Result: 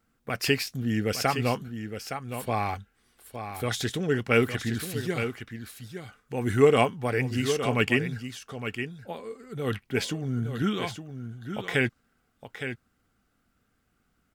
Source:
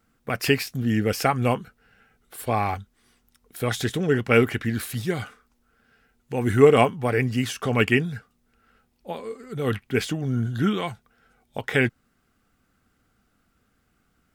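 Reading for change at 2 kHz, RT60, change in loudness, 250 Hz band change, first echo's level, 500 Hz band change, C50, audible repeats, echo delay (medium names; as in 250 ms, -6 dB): -2.5 dB, no reverb, -4.0 dB, -4.0 dB, -9.0 dB, -4.0 dB, no reverb, 1, 864 ms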